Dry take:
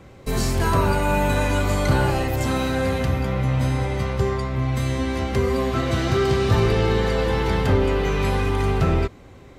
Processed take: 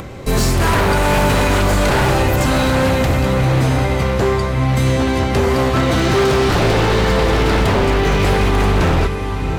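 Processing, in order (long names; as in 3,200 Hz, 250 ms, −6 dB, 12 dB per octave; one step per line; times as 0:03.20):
feedback delay with all-pass diffusion 734 ms, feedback 45%, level −9 dB
wave folding −17 dBFS
upward compression, threshold −32 dBFS
level +8 dB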